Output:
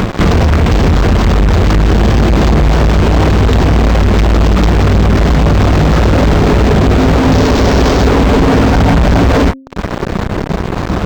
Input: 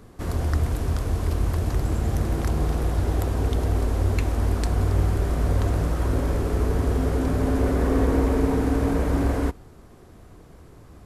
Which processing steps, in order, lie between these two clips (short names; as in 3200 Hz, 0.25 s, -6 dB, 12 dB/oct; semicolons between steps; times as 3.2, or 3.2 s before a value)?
tracing distortion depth 0.4 ms; upward compressor, threshold -42 dBFS; bell 190 Hz +9 dB 0.38 oct; compressor 2:1, threshold -35 dBFS, peak gain reduction 11 dB; reverb removal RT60 0.58 s; resonator 52 Hz, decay 0.33 s, harmonics all, mix 60%; 7.31–8.07 resonant high shelf 4500 Hz +8.5 dB, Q 3; 8.72–9.21 comb 1.3 ms, depth 64%; fuzz box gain 51 dB, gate -50 dBFS; de-hum 266.5 Hz, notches 2; decimation joined by straight lines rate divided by 4×; gain +7 dB